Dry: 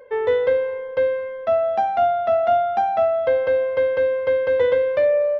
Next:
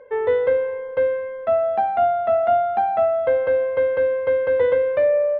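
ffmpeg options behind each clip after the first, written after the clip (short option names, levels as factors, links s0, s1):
-af "lowpass=2400"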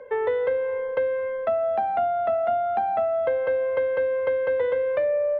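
-filter_complex "[0:a]acrossover=split=170|400[s0][s1][s2];[s0]acompressor=threshold=0.00141:ratio=4[s3];[s1]acompressor=threshold=0.00794:ratio=4[s4];[s2]acompressor=threshold=0.0447:ratio=4[s5];[s3][s4][s5]amix=inputs=3:normalize=0,volume=1.41"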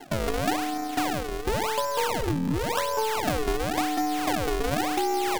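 -af "acrusher=samples=35:mix=1:aa=0.000001:lfo=1:lforange=56:lforate=0.93,aeval=exprs='val(0)*sin(2*PI*220*n/s)':c=same,aeval=exprs='0.188*(cos(1*acos(clip(val(0)/0.188,-1,1)))-cos(1*PI/2))+0.0119*(cos(8*acos(clip(val(0)/0.188,-1,1)))-cos(8*PI/2))':c=same"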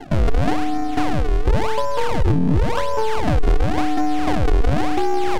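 -af "aemphasis=mode=reproduction:type=bsi,asoftclip=type=tanh:threshold=0.158,volume=2"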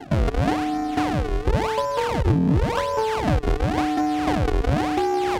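-af "highpass=50,volume=0.891"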